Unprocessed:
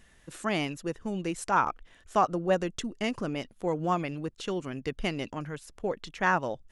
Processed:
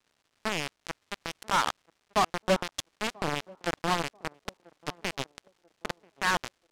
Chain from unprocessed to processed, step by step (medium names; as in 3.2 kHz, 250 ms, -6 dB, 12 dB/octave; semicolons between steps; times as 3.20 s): expander on every frequency bin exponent 1.5; in parallel at -3 dB: compressor with a negative ratio -35 dBFS, ratio -0.5; on the sum: bit crusher 4-bit; crackle 430 per s -54 dBFS; distance through air 52 m; on a send: band-passed feedback delay 987 ms, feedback 42%, band-pass 410 Hz, level -22.5 dB